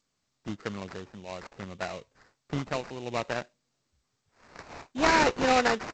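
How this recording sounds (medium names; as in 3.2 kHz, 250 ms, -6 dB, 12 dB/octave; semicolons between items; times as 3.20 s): tremolo triangle 0.61 Hz, depth 55%; aliases and images of a low sample rate 3.3 kHz, jitter 20%; G.722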